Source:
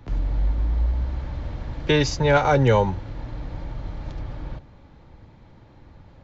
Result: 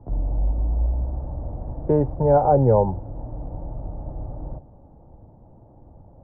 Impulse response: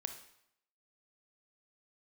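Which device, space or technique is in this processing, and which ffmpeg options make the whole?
under water: -af "lowpass=f=830:w=0.5412,lowpass=f=830:w=1.3066,equalizer=f=700:t=o:w=0.58:g=6.5"

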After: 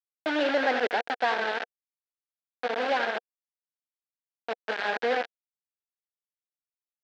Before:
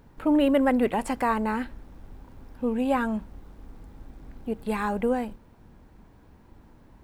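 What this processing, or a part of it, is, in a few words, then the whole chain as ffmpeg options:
hand-held game console: -filter_complex "[0:a]asettb=1/sr,asplit=3[a][b][c];[a]atrim=end=1.394[d];[b]atrim=start=1.39:end=2.99,asetpts=PTS-STARTPTS,afade=t=in:d=0.004:c=qsin,afade=t=out:st=1.596:d=0.004:c=qsin,bandreject=f=60:t=h:w=6,bandreject=f=120:t=h:w=6,bandreject=f=180:t=h:w=6,bandreject=f=240:t=h:w=6,bandreject=f=300:t=h:w=6,bandreject=f=360:t=h:w=6,bandreject=f=420:t=h:w=6,bandreject=f=480:t=h:w=6[e];[c]atrim=start=2.986[f];[d][e]acrossfade=d=0.004:c1=hsin:c2=qsin[g];[g][f]acrossfade=d=0.004:c1=qsin:c2=hsin,aecho=1:1:87:0.355,acrusher=bits=3:mix=0:aa=0.000001,highpass=440,equalizer=f=480:t=q:w=4:g=5,equalizer=f=720:t=q:w=4:g=7,equalizer=f=1.1k:t=q:w=4:g=-6,equalizer=f=1.6k:t=q:w=4:g=9,lowpass=f=4.2k:w=0.5412,lowpass=f=4.2k:w=1.3066,volume=-4.5dB"

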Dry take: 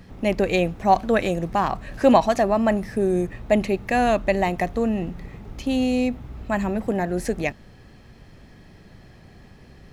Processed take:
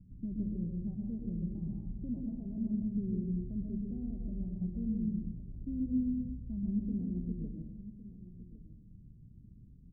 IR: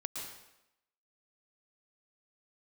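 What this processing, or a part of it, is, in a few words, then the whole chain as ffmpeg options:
club heard from the street: -filter_complex "[0:a]alimiter=limit=-13.5dB:level=0:latency=1:release=167,lowpass=f=230:w=0.5412,lowpass=f=230:w=1.3066[a];[1:a]atrim=start_sample=2205[b];[a][b]afir=irnorm=-1:irlink=0,asplit=2[c][d];[d]adelay=1108,volume=-15dB,highshelf=f=4k:g=-24.9[e];[c][e]amix=inputs=2:normalize=0,volume=-6.5dB"

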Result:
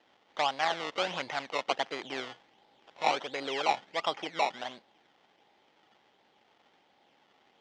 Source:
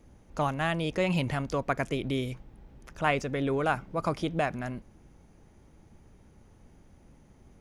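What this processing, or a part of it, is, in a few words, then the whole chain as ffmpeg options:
circuit-bent sampling toy: -af "acrusher=samples=19:mix=1:aa=0.000001:lfo=1:lforange=19:lforate=1.4,highpass=510,equalizer=f=800:t=q:w=4:g=7,equalizer=f=2k:t=q:w=4:g=4,equalizer=f=3.2k:t=q:w=4:g=9,lowpass=f=5.8k:w=0.5412,lowpass=f=5.8k:w=1.3066,volume=-2dB"

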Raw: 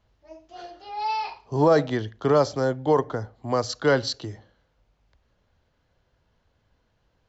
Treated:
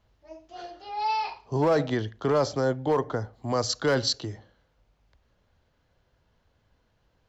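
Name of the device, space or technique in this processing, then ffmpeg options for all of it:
clipper into limiter: -filter_complex "[0:a]asoftclip=type=hard:threshold=-12.5dB,alimiter=limit=-16.5dB:level=0:latency=1:release=12,asettb=1/sr,asplit=3[a][b][c];[a]atrim=end=3.334[d];[b]atrim=start=3.33:end=4.21,asetpts=PTS-STARTPTS,afade=t=in:d=0.004:c=qsin,afade=t=out:st=0.876:d=0.004:c=qsin,bass=f=250:g=1,treble=f=4k:g=5[e];[c]atrim=start=4.206[f];[d][e]acrossfade=d=0.004:c1=hsin:c2=qsin[g];[g][f]acrossfade=d=0.004:c1=qsin:c2=hsin"

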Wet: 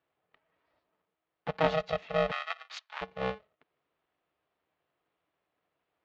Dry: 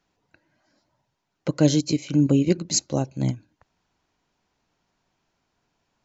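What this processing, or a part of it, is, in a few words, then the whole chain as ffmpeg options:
ring modulator pedal into a guitar cabinet: -filter_complex "[0:a]aeval=exprs='val(0)*sgn(sin(2*PI*320*n/s))':c=same,highpass=83,equalizer=f=110:t=q:w=4:g=-8,equalizer=f=220:t=q:w=4:g=-9,equalizer=f=720:t=q:w=4:g=4,lowpass=f=3.4k:w=0.5412,lowpass=f=3.4k:w=1.3066,asplit=3[a][b][c];[a]afade=t=out:st=2.3:d=0.02[d];[b]highpass=f=1.1k:w=0.5412,highpass=f=1.1k:w=1.3066,afade=t=in:st=2.3:d=0.02,afade=t=out:st=3.01:d=0.02[e];[c]afade=t=in:st=3.01:d=0.02[f];[d][e][f]amix=inputs=3:normalize=0,volume=-8dB"

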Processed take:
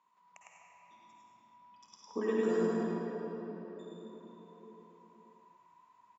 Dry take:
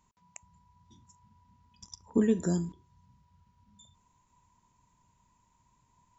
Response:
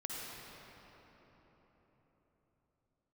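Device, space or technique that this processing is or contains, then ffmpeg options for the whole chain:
station announcement: -filter_complex "[0:a]highpass=460,lowpass=3.5k,equalizer=f=1.1k:t=o:w=0.33:g=7,aecho=1:1:105|198.3:0.794|0.251[a];[1:a]atrim=start_sample=2205[b];[a][b]afir=irnorm=-1:irlink=0,volume=1dB"

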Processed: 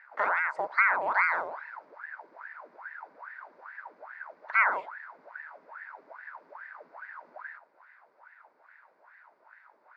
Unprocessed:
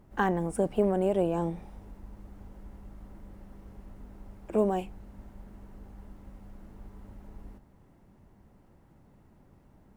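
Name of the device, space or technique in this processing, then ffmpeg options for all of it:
voice changer toy: -af "aeval=exprs='val(0)*sin(2*PI*1000*n/s+1000*0.8/2.4*sin(2*PI*2.4*n/s))':c=same,highpass=590,equalizer=f=610:t=q:w=4:g=6,equalizer=f=940:t=q:w=4:g=9,equalizer=f=1.5k:t=q:w=4:g=9,equalizer=f=2.1k:t=q:w=4:g=7,equalizer=f=3.1k:t=q:w=4:g=-7,equalizer=f=4.7k:t=q:w=4:g=7,lowpass=f=4.9k:w=0.5412,lowpass=f=4.9k:w=1.3066,volume=-2.5dB"

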